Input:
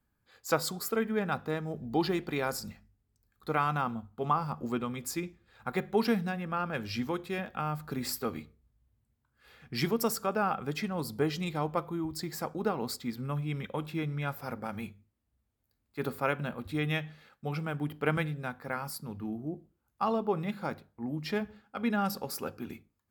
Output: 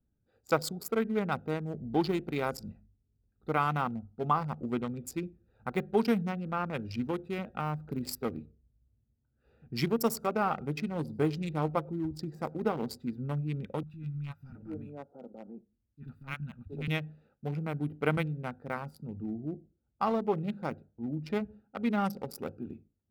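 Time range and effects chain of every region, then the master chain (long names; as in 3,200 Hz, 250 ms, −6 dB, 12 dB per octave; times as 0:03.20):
0:10.03–0:13.07: double-tracking delay 13 ms −12 dB + single-tap delay 99 ms −20.5 dB
0:13.83–0:16.88: transient designer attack −10 dB, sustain −5 dB + three-band delay without the direct sound lows, highs, mids 30/720 ms, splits 220/1,100 Hz
whole clip: adaptive Wiener filter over 41 samples; notch filter 1,700 Hz, Q 11; level +1 dB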